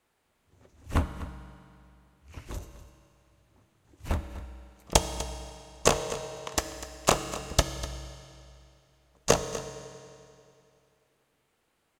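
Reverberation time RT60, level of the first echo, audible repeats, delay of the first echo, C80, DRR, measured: 2.6 s, -15.0 dB, 1, 247 ms, 9.0 dB, 7.5 dB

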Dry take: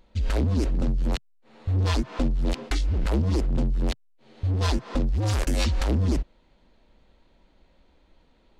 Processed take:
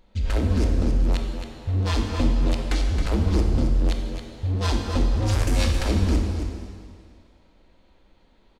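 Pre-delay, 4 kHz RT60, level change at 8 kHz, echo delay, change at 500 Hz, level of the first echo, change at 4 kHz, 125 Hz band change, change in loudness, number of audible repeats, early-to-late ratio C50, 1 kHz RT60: 19 ms, 2.0 s, +2.5 dB, 270 ms, +2.5 dB, -7.5 dB, +2.5 dB, +2.0 dB, +2.0 dB, 1, 2.0 dB, 2.2 s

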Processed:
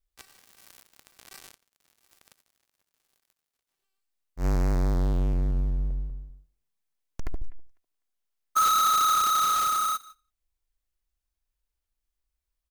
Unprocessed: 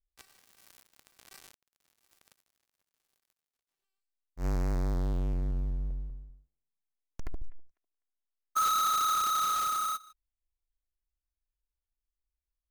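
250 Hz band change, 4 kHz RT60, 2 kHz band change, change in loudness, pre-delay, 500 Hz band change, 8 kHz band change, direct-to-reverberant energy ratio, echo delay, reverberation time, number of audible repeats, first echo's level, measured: +5.5 dB, no reverb, +5.5 dB, +5.5 dB, no reverb, +5.5 dB, +5.5 dB, no reverb, 89 ms, no reverb, 2, -23.5 dB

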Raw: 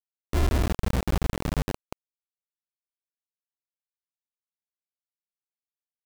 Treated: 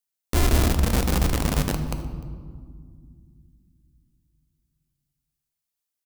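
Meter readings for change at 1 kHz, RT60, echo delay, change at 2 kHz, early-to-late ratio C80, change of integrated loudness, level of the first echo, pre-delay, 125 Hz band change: +4.5 dB, 2.0 s, 301 ms, +5.5 dB, 10.0 dB, +4.5 dB, -22.5 dB, 4 ms, +4.5 dB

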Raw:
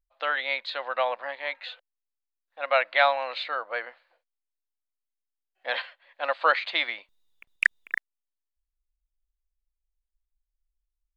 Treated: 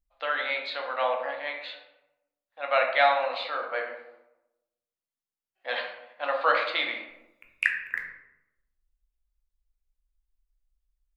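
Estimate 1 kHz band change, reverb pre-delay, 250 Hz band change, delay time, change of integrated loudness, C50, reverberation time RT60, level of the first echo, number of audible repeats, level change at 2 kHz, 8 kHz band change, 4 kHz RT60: +0.5 dB, 9 ms, +3.0 dB, no echo, -0.5 dB, 5.5 dB, 0.90 s, no echo, no echo, -1.0 dB, no reading, 0.50 s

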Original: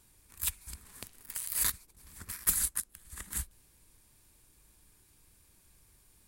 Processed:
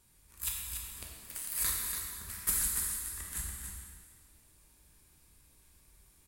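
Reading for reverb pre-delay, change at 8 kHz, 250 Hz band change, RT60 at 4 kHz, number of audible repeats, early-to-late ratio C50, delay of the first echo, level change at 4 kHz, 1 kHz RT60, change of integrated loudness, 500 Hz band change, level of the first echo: 5 ms, 0.0 dB, 0.0 dB, 1.7 s, 1, -0.5 dB, 286 ms, 0.0 dB, 1.8 s, -1.5 dB, +0.5 dB, -6.5 dB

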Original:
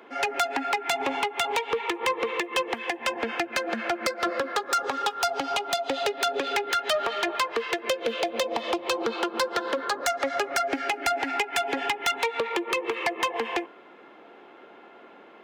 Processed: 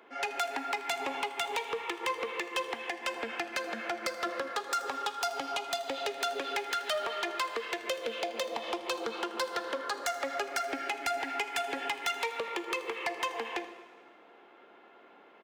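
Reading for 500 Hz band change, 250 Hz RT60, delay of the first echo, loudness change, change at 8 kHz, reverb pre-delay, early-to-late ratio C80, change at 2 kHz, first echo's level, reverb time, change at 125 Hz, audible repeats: -7.5 dB, 1.6 s, 80 ms, -7.0 dB, -6.0 dB, 8 ms, 12.0 dB, -6.5 dB, -17.5 dB, 1.6 s, no reading, 1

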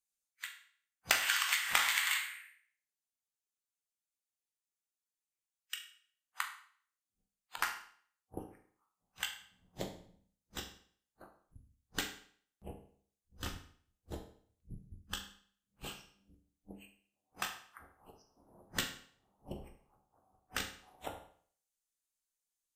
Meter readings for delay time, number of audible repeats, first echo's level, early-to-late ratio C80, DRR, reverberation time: no echo, no echo, no echo, 12.0 dB, 3.5 dB, 0.55 s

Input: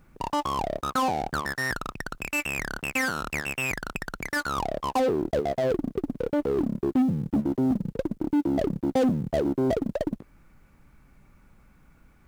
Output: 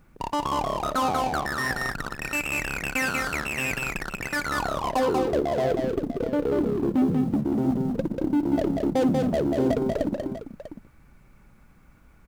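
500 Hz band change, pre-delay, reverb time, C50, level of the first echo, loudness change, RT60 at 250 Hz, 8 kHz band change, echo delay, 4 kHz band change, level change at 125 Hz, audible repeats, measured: +2.0 dB, no reverb, no reverb, no reverb, -19.0 dB, +2.0 dB, no reverb, +2.0 dB, 55 ms, +2.0 dB, +1.5 dB, 4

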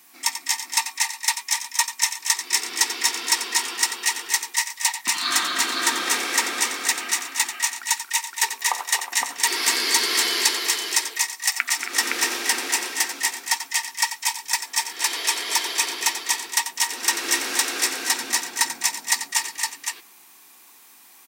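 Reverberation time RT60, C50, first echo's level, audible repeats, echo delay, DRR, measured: no reverb, no reverb, -10.0 dB, 5, 90 ms, no reverb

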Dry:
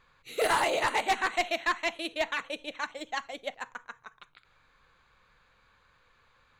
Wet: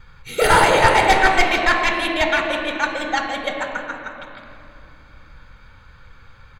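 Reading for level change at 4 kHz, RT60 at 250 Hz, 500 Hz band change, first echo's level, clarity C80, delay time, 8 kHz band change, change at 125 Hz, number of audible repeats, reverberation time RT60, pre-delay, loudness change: +11.5 dB, 3.8 s, +12.5 dB, -13.5 dB, 4.5 dB, 166 ms, +11.0 dB, no reading, 1, 2.7 s, 3 ms, +13.0 dB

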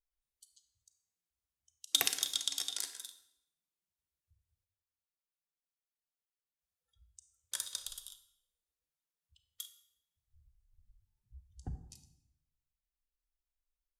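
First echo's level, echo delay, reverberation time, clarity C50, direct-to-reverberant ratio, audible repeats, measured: no echo, no echo, 0.80 s, 11.0 dB, 9.5 dB, no echo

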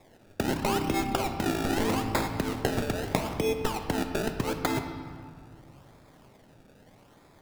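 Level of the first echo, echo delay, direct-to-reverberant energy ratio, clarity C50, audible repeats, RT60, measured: no echo, no echo, 5.5 dB, 7.5 dB, no echo, 2.1 s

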